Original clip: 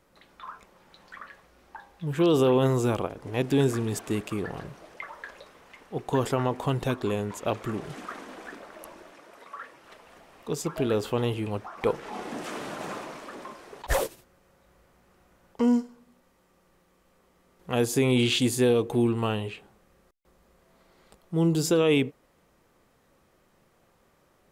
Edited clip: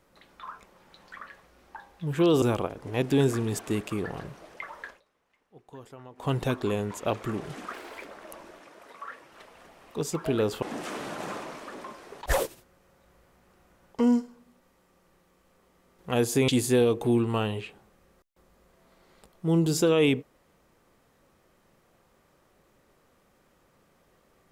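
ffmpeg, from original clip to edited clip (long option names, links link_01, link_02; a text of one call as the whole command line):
ffmpeg -i in.wav -filter_complex "[0:a]asplit=8[link_01][link_02][link_03][link_04][link_05][link_06][link_07][link_08];[link_01]atrim=end=2.422[link_09];[link_02]atrim=start=2.818:end=5.41,asetpts=PTS-STARTPTS,afade=type=out:start_time=2.442:duration=0.15:silence=0.0944061[link_10];[link_03]atrim=start=5.41:end=6.56,asetpts=PTS-STARTPTS,volume=-20.5dB[link_11];[link_04]atrim=start=6.56:end=8.134,asetpts=PTS-STARTPTS,afade=type=in:duration=0.15:silence=0.0944061[link_12];[link_05]atrim=start=8.13:end=8.57,asetpts=PTS-STARTPTS,asetrate=59976,aresample=44100[link_13];[link_06]atrim=start=8.566:end=11.142[link_14];[link_07]atrim=start=12.228:end=18.092[link_15];[link_08]atrim=start=18.368[link_16];[link_10][link_11][link_12]concat=n=3:v=0:a=1[link_17];[link_09][link_17]acrossfade=duration=0.004:curve1=hsin:curve2=hsin[link_18];[link_18][link_13]acrossfade=duration=0.004:curve1=hsin:curve2=hsin[link_19];[link_19][link_14]acrossfade=duration=0.004:curve1=hsin:curve2=hsin[link_20];[link_20][link_15]acrossfade=duration=0.004:curve1=hsin:curve2=hsin[link_21];[link_21][link_16]acrossfade=duration=0.004:curve1=hsin:curve2=hsin" out.wav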